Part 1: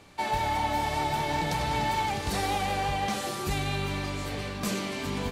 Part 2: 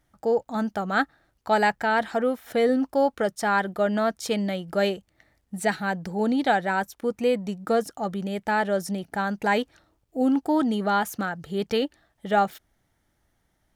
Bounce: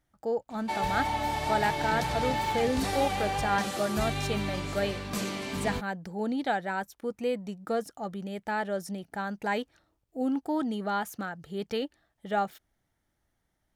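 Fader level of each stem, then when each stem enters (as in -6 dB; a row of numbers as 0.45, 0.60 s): -2.0, -7.0 dB; 0.50, 0.00 s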